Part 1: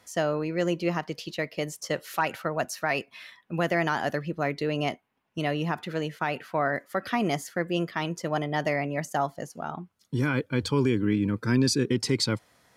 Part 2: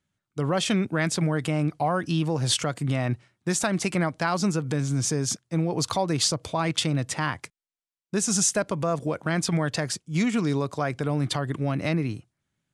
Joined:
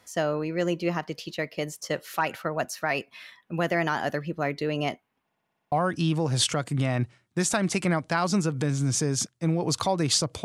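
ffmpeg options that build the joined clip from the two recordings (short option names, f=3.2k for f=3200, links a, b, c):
-filter_complex "[0:a]apad=whole_dur=10.44,atrim=end=10.44,asplit=8[a][b][c][d][e][f][g][h];[a]atrim=end=5.302[i];[b]atrim=start=5.238:end=5.302[j];[c]atrim=start=5.238:end=5.302[k];[d]atrim=start=5.238:end=5.302[l];[e]atrim=start=5.238:end=5.302[m];[f]atrim=start=5.238:end=5.302[n];[g]atrim=start=5.238:end=5.302[o];[h]atrim=start=5.238:end=5.302[p];[1:a]atrim=start=1.818:end=6.54[q];[i][j]acrossfade=d=0.004:c1=hsin:c2=hsin[r];[r][k]acrossfade=d=0.004:c1=hsin:c2=hsin[s];[s][l]acrossfade=d=0.004:c1=hsin:c2=hsin[t];[t][m]acrossfade=d=0.004:c1=hsin:c2=hsin[u];[u][n]acrossfade=d=0.004:c1=hsin:c2=hsin[v];[v][o]acrossfade=d=0.004:c1=hsin:c2=hsin[w];[w][p]acrossfade=d=0.004:c1=hsin:c2=hsin[x];[x][q]acrossfade=d=0.004:c1=hsin:c2=hsin"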